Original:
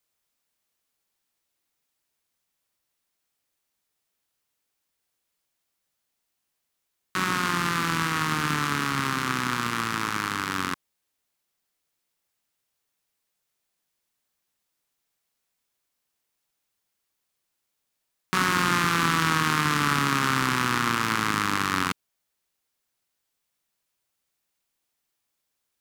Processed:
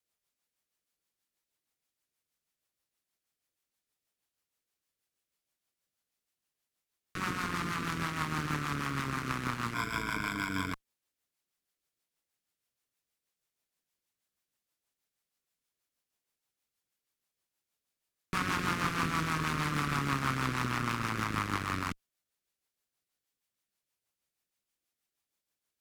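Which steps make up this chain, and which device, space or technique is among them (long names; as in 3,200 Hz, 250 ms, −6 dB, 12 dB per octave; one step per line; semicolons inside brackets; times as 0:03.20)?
overdriven rotary cabinet (tube saturation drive 19 dB, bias 0.7; rotating-speaker cabinet horn 6.3 Hz)
0:09.74–0:10.73: EQ curve with evenly spaced ripples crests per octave 1.7, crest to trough 15 dB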